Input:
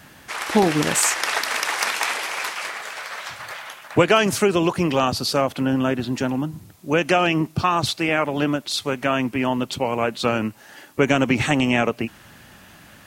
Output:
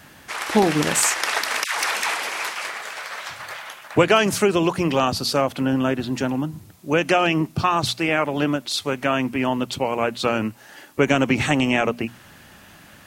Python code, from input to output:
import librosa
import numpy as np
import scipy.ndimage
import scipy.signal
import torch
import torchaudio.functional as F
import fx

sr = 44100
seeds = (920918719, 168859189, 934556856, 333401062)

y = fx.hum_notches(x, sr, base_hz=60, count=4)
y = fx.dispersion(y, sr, late='lows', ms=135.0, hz=730.0, at=(1.64, 2.45))